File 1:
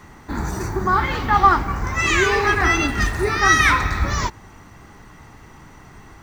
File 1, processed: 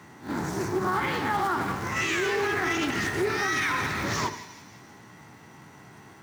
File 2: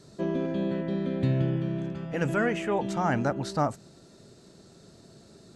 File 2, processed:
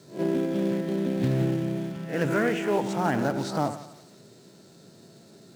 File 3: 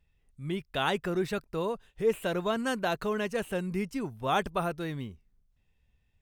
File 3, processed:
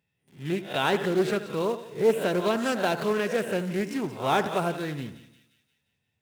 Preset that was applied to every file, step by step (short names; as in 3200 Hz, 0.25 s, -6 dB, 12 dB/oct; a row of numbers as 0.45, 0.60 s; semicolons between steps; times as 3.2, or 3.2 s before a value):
spectral swells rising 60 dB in 0.32 s; in parallel at -5 dB: companded quantiser 4-bit; on the sum: HPF 110 Hz 24 dB/oct; notch 1200 Hz, Q 12; on a send: split-band echo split 2200 Hz, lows 82 ms, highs 0.176 s, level -12 dB; on the sum: dynamic EQ 360 Hz, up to +4 dB, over -30 dBFS, Q 1.9; limiter -9 dBFS; Doppler distortion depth 0.21 ms; match loudness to -27 LUFS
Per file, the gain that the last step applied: -9.0, -4.5, -1.5 dB